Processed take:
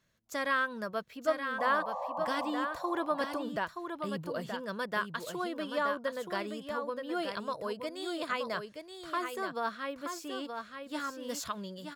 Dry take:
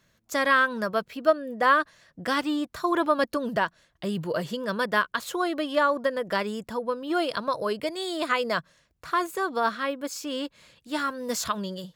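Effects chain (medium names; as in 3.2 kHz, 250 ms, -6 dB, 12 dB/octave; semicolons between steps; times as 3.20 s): painted sound noise, 1.58–2.51 s, 500–1200 Hz -28 dBFS; delay 925 ms -6.5 dB; trim -9 dB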